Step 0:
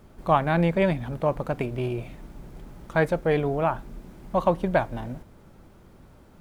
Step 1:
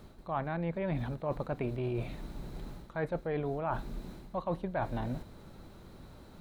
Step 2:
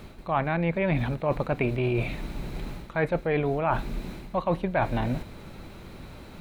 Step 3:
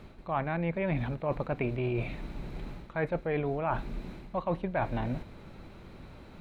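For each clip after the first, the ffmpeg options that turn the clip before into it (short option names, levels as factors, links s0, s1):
-filter_complex "[0:a]acrossover=split=2600[s0][s1];[s1]acompressor=threshold=0.00141:ratio=4:attack=1:release=60[s2];[s0][s2]amix=inputs=2:normalize=0,equalizer=f=4000:w=6.6:g=12.5,areverse,acompressor=threshold=0.0316:ratio=16,areverse"
-af "equalizer=f=2400:w=2.1:g=8.5,volume=2.51"
-af "lowpass=f=3400:p=1,volume=0.562"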